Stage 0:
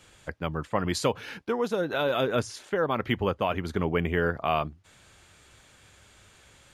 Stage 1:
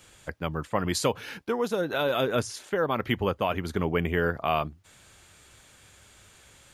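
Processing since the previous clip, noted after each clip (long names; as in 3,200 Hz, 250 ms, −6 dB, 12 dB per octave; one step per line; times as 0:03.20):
high-shelf EQ 8,700 Hz +9 dB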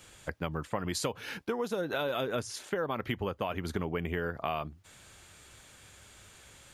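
downward compressor, threshold −29 dBFS, peak gain reduction 9.5 dB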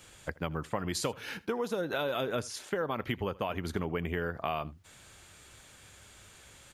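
single-tap delay 81 ms −22 dB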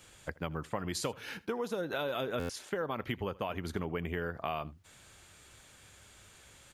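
buffer that repeats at 0:02.39, samples 512, times 8
level −2.5 dB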